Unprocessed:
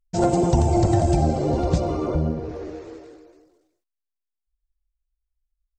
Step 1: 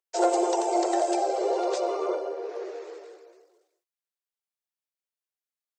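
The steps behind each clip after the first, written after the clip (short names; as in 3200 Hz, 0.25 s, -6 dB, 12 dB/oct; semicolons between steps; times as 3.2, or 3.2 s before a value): steep high-pass 360 Hz 96 dB/oct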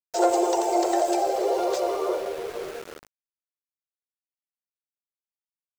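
sample gate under -37.5 dBFS; gain +2 dB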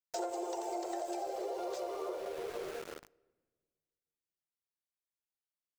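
compressor 6:1, threshold -31 dBFS, peak gain reduction 14.5 dB; on a send at -24 dB: reverb RT60 1.6 s, pre-delay 6 ms; on the sum: gain -5 dB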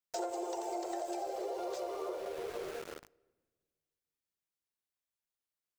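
bell 80 Hz +3 dB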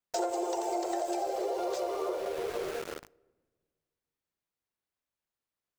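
mismatched tape noise reduction decoder only; gain +6 dB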